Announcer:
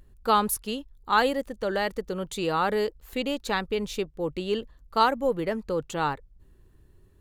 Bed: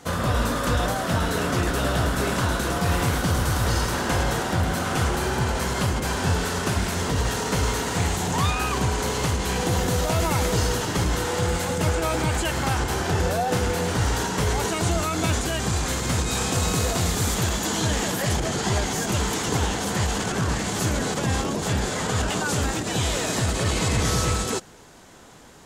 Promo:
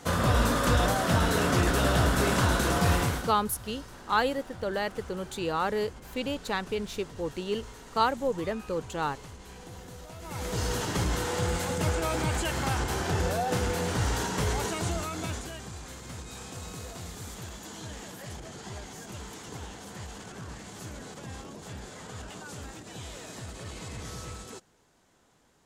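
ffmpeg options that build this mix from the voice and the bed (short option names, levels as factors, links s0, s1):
-filter_complex "[0:a]adelay=3000,volume=0.668[s0];[1:a]volume=6.31,afade=t=out:st=2.88:d=0.47:silence=0.0891251,afade=t=in:st=10.21:d=0.6:silence=0.141254,afade=t=out:st=14.46:d=1.24:silence=0.237137[s1];[s0][s1]amix=inputs=2:normalize=0"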